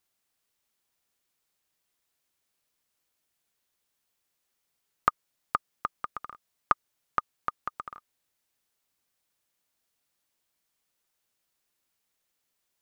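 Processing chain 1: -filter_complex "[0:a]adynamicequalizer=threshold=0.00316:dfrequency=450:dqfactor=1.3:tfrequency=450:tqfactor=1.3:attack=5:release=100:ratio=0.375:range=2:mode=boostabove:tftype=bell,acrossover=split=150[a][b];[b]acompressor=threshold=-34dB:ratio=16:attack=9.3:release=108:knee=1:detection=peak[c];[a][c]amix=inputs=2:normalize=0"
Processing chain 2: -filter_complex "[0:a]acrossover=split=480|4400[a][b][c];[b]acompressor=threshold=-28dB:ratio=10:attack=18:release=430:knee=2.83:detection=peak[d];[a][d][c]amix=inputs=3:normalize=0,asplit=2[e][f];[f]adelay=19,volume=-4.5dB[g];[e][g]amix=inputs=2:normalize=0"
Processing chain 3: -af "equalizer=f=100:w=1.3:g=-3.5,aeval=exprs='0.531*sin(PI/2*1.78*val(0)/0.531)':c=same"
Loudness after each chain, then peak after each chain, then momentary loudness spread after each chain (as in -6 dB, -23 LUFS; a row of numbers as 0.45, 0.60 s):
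-41.0, -35.0, -28.0 LUFS; -8.0, -6.0, -5.5 dBFS; 7, 13, 11 LU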